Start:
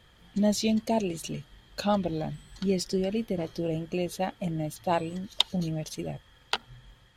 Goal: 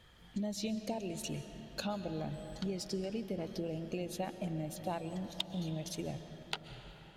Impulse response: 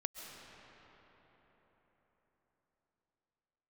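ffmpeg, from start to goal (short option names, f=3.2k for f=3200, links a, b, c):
-filter_complex "[0:a]acompressor=threshold=-32dB:ratio=6,asplit=2[a][b];[1:a]atrim=start_sample=2205[c];[b][c]afir=irnorm=-1:irlink=0,volume=-0.5dB[d];[a][d]amix=inputs=2:normalize=0,volume=-7.5dB"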